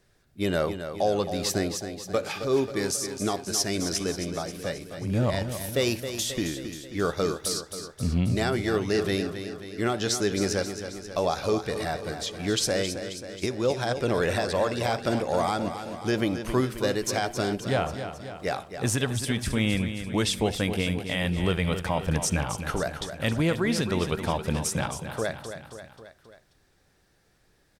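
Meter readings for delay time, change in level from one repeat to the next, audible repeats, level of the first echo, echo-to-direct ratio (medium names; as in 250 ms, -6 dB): 268 ms, -4.5 dB, 4, -9.5 dB, -7.5 dB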